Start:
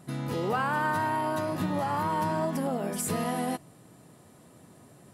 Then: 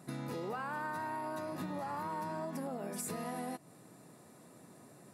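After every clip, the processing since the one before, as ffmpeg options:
ffmpeg -i in.wav -af "highpass=150,bandreject=frequency=3100:width=6.7,acompressor=threshold=-36dB:ratio=4,volume=-2dB" out.wav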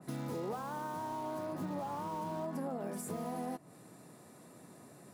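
ffmpeg -i in.wav -filter_complex "[0:a]acrossover=split=230|1300|5000[link_01][link_02][link_03][link_04];[link_03]aeval=exprs='(mod(355*val(0)+1,2)-1)/355':channel_layout=same[link_05];[link_01][link_02][link_05][link_04]amix=inputs=4:normalize=0,adynamicequalizer=threshold=0.00126:dfrequency=2100:dqfactor=0.7:tfrequency=2100:tqfactor=0.7:attack=5:release=100:ratio=0.375:range=3:mode=cutabove:tftype=highshelf,volume=1.5dB" out.wav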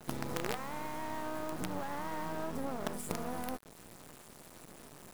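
ffmpeg -i in.wav -af "acrusher=bits=6:dc=4:mix=0:aa=0.000001,volume=4dB" out.wav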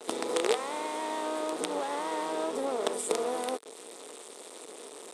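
ffmpeg -i in.wav -af "highpass=frequency=300:width=0.5412,highpass=frequency=300:width=1.3066,equalizer=frequency=450:width_type=q:width=4:gain=10,equalizer=frequency=1600:width_type=q:width=4:gain=-5,equalizer=frequency=3600:width_type=q:width=4:gain=7,equalizer=frequency=8600:width_type=q:width=4:gain=9,lowpass=frequency=10000:width=0.5412,lowpass=frequency=10000:width=1.3066,volume=6.5dB" out.wav

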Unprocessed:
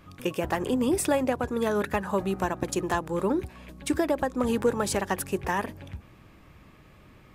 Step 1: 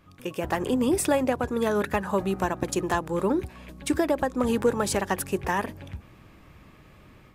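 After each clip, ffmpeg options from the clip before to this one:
ffmpeg -i in.wav -af "dynaudnorm=framelen=260:gausssize=3:maxgain=7dB,volume=-5.5dB" out.wav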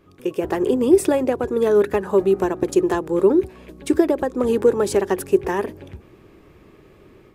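ffmpeg -i in.wav -af "equalizer=frequency=390:width=2:gain=14.5,volume=-1dB" out.wav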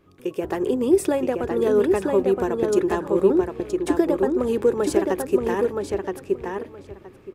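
ffmpeg -i in.wav -filter_complex "[0:a]asplit=2[link_01][link_02];[link_02]adelay=971,lowpass=frequency=4600:poles=1,volume=-3.5dB,asplit=2[link_03][link_04];[link_04]adelay=971,lowpass=frequency=4600:poles=1,volume=0.17,asplit=2[link_05][link_06];[link_06]adelay=971,lowpass=frequency=4600:poles=1,volume=0.17[link_07];[link_01][link_03][link_05][link_07]amix=inputs=4:normalize=0,volume=-3.5dB" out.wav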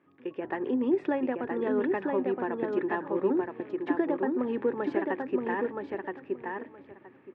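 ffmpeg -i in.wav -af "highpass=frequency=130:width=0.5412,highpass=frequency=130:width=1.3066,equalizer=frequency=180:width_type=q:width=4:gain=-4,equalizer=frequency=260:width_type=q:width=4:gain=7,equalizer=frequency=420:width_type=q:width=4:gain=-3,equalizer=frequency=890:width_type=q:width=4:gain=6,equalizer=frequency=1800:width_type=q:width=4:gain=9,lowpass=frequency=3000:width=0.5412,lowpass=frequency=3000:width=1.3066,volume=-8.5dB" out.wav

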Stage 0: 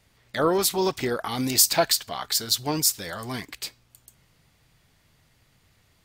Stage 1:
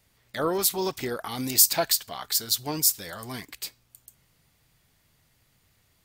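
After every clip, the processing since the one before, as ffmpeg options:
ffmpeg -i in.wav -af "highshelf=frequency=9500:gain=10.5,volume=-4.5dB" out.wav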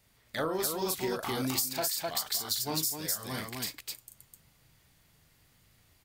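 ffmpeg -i in.wav -filter_complex "[0:a]asplit=2[link_01][link_02];[link_02]aecho=0:1:37.9|256.6:0.562|0.708[link_03];[link_01][link_03]amix=inputs=2:normalize=0,acompressor=threshold=-26dB:ratio=12,volume=-1.5dB" out.wav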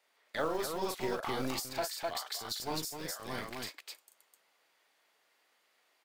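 ffmpeg -i in.wav -filter_complex "[0:a]lowpass=frequency=2600:poles=1,acrossover=split=400[link_01][link_02];[link_01]acrusher=bits=5:dc=4:mix=0:aa=0.000001[link_03];[link_03][link_02]amix=inputs=2:normalize=0" out.wav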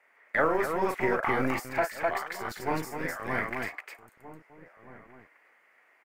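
ffmpeg -i in.wav -filter_complex "[0:a]highshelf=frequency=2800:width_type=q:width=3:gain=-11,asplit=2[link_01][link_02];[link_02]adelay=1574,volume=-16dB,highshelf=frequency=4000:gain=-35.4[link_03];[link_01][link_03]amix=inputs=2:normalize=0,volume=7dB" out.wav

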